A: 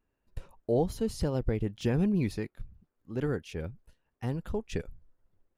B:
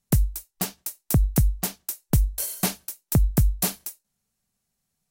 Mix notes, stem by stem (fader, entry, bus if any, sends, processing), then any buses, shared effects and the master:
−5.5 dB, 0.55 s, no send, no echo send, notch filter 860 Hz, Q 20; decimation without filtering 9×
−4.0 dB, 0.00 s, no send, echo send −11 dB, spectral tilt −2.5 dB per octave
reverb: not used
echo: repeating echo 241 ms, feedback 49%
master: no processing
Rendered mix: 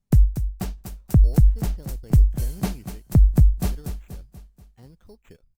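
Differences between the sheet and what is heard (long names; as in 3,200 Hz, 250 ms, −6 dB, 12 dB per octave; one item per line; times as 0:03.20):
stem A −5.5 dB → −15.5 dB
master: extra parametric band 11,000 Hz −2.5 dB 0.39 octaves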